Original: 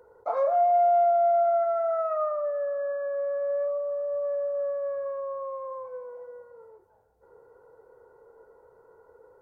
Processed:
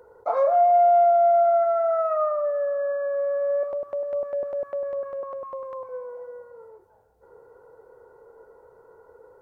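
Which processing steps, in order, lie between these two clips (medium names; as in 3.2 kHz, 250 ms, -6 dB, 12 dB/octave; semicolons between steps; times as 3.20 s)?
3.63–5.89 s: step-sequenced notch 10 Hz 450–1800 Hz; trim +4 dB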